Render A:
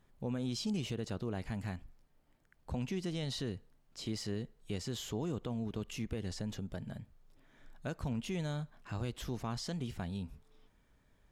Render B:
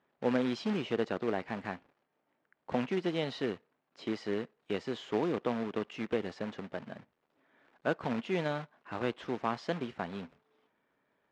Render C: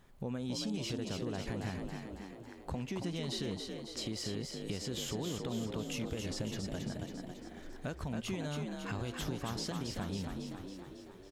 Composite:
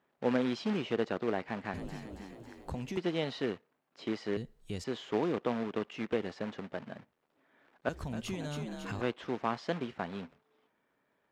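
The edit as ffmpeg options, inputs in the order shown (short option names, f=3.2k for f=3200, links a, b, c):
-filter_complex "[2:a]asplit=2[a][b];[1:a]asplit=4[c][d][e][f];[c]atrim=end=1.742[g];[a]atrim=start=1.738:end=2.972[h];[d]atrim=start=2.968:end=4.372[i];[0:a]atrim=start=4.368:end=4.842[j];[e]atrim=start=4.838:end=7.892[k];[b]atrim=start=7.888:end=9.012[l];[f]atrim=start=9.008[m];[g][h]acrossfade=d=0.004:c1=hsin:c2=hsin[n];[n][i]acrossfade=d=0.004:c1=hsin:c2=hsin[o];[o][j]acrossfade=d=0.004:c1=hsin:c2=hsin[p];[p][k]acrossfade=d=0.004:c1=hsin:c2=hsin[q];[q][l]acrossfade=d=0.004:c1=hsin:c2=hsin[r];[r][m]acrossfade=d=0.004:c1=hsin:c2=hsin"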